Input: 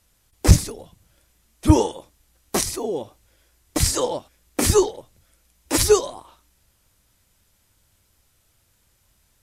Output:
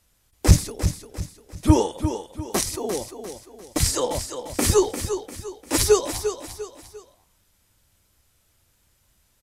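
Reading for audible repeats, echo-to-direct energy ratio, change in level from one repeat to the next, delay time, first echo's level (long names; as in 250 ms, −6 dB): 3, −8.5 dB, −8.0 dB, 348 ms, −9.0 dB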